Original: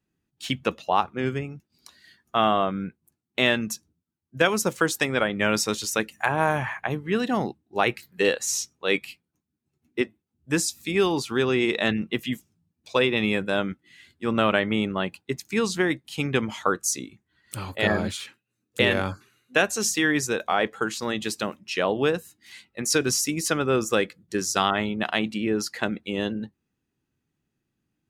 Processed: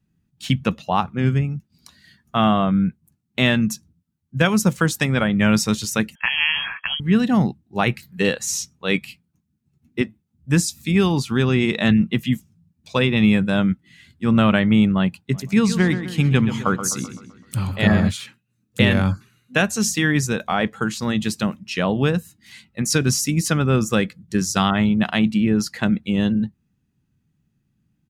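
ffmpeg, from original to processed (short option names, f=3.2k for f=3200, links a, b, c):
-filter_complex "[0:a]asettb=1/sr,asplit=3[a][b][c];[a]atrim=end=6.154[d];[b]atrim=start=6.15:end=7,asetpts=PTS-STARTPTS,afade=t=in:d=0.004:c=qsin,afade=t=out:st=0.846:d=0.004:c=qsin,lowpass=f=2.9k:t=q:w=0.5098,lowpass=f=2.9k:t=q:w=0.6013,lowpass=f=2.9k:t=q:w=0.9,lowpass=f=2.9k:t=q:w=2.563,afreqshift=-3400[e];[c]atrim=start=6.996[f];[d][e]acrossfade=d=0.004:c1=hsin:c2=qsin[g];[g][f]acrossfade=d=0.004:c1=qsin:c2=hsin,asplit=3[h][i][j];[h]afade=t=out:st=15.32:d=0.02[k];[i]asplit=2[l][m];[m]adelay=128,lowpass=f=3.8k:p=1,volume=-10dB,asplit=2[n][o];[o]adelay=128,lowpass=f=3.8k:p=1,volume=0.52,asplit=2[p][q];[q]adelay=128,lowpass=f=3.8k:p=1,volume=0.52,asplit=2[r][s];[s]adelay=128,lowpass=f=3.8k:p=1,volume=0.52,asplit=2[t][u];[u]adelay=128,lowpass=f=3.8k:p=1,volume=0.52,asplit=2[v][w];[w]adelay=128,lowpass=f=3.8k:p=1,volume=0.52[x];[l][n][p][r][t][v][x]amix=inputs=7:normalize=0,afade=t=in:st=15.32:d=0.02,afade=t=out:st=18.08:d=0.02[y];[j]afade=t=in:st=18.08:d=0.02[z];[k][y][z]amix=inputs=3:normalize=0,lowshelf=f=260:t=q:w=1.5:g=9.5,volume=2dB"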